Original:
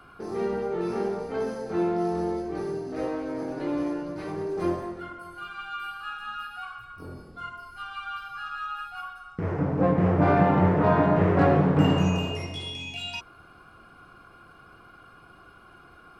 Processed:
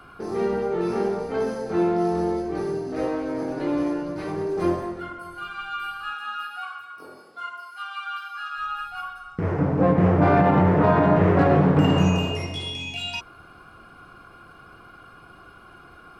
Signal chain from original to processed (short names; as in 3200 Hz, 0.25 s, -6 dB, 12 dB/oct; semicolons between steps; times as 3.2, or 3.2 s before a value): 6.13–8.57 HPF 280 Hz -> 1100 Hz 12 dB/oct; maximiser +11.5 dB; gain -7.5 dB